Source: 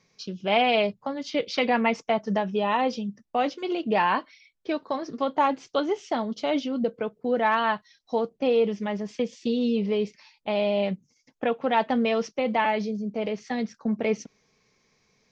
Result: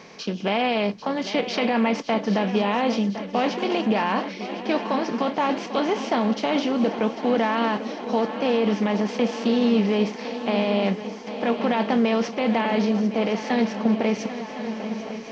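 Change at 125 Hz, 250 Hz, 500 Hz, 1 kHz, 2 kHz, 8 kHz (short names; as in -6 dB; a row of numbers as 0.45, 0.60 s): +6.5 dB, +6.0 dB, +2.0 dB, +0.5 dB, +1.5 dB, n/a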